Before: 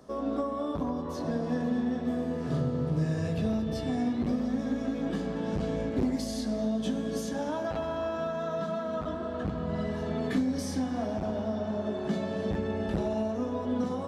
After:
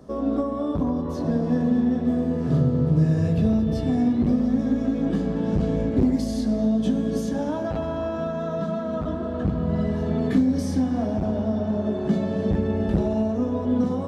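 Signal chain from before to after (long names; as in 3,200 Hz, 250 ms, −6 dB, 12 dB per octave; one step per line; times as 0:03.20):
low-shelf EQ 490 Hz +10.5 dB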